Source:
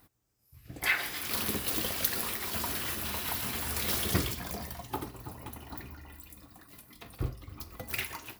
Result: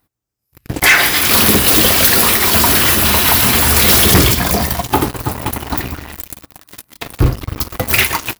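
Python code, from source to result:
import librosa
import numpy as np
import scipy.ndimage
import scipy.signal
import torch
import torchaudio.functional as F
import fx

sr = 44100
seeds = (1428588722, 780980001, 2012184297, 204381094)

y = fx.leveller(x, sr, passes=5)
y = y * 10.0 ** (6.0 / 20.0)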